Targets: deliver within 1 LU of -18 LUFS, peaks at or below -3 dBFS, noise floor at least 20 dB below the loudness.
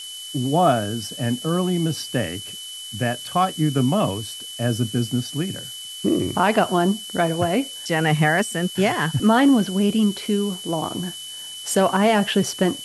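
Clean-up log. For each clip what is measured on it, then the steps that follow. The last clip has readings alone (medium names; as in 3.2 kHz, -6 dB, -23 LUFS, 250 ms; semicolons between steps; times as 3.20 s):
steady tone 3 kHz; tone level -34 dBFS; noise floor -35 dBFS; noise floor target -42 dBFS; loudness -21.5 LUFS; peak level -5.0 dBFS; loudness target -18.0 LUFS
-> band-stop 3 kHz, Q 30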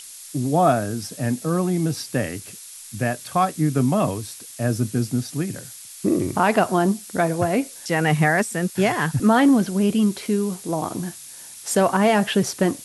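steady tone not found; noise floor -41 dBFS; noise floor target -42 dBFS
-> noise print and reduce 6 dB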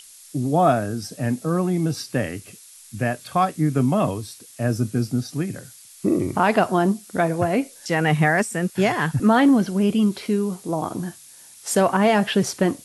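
noise floor -46 dBFS; loudness -21.5 LUFS; peak level -5.5 dBFS; loudness target -18.0 LUFS
-> trim +3.5 dB; peak limiter -3 dBFS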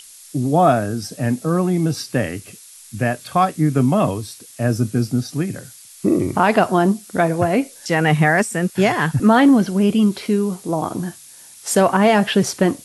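loudness -18.0 LUFS; peak level -3.0 dBFS; noise floor -43 dBFS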